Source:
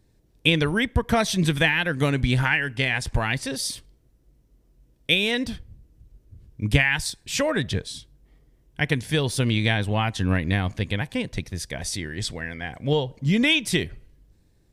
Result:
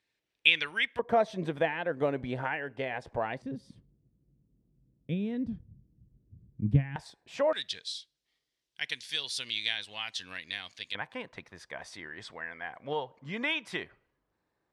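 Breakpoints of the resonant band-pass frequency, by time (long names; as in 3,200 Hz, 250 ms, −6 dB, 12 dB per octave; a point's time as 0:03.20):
resonant band-pass, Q 1.7
2,500 Hz
from 0:00.99 600 Hz
from 0:03.42 170 Hz
from 0:06.96 740 Hz
from 0:07.53 4,200 Hz
from 0:10.95 1,100 Hz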